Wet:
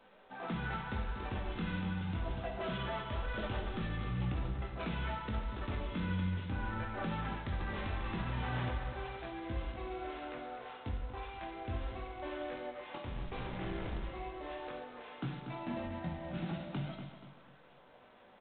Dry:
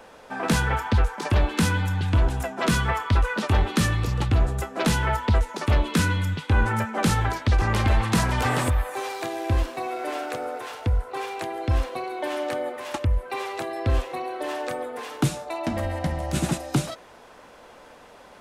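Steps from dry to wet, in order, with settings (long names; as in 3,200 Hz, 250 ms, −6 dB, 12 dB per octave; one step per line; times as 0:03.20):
parametric band 180 Hz +4 dB 0.63 octaves
mains-hum notches 50/100/150 Hz
0:13.02–0:14.04: comparator with hysteresis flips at −27 dBFS
tuned comb filter 190 Hz, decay 1 s, mix 70%
multi-voice chorus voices 4, 0.2 Hz, delay 20 ms, depth 4.2 ms
0:02.26–0:03.54: thirty-one-band graphic EQ 400 Hz +4 dB, 630 Hz +10 dB, 3,150 Hz +5 dB
repeating echo 239 ms, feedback 39%, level −11 dB
brickwall limiter −27.5 dBFS, peak gain reduction 8.5 dB
four-comb reverb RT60 0.88 s, combs from 33 ms, DRR 5 dB
level −2 dB
G.726 24 kbit/s 8,000 Hz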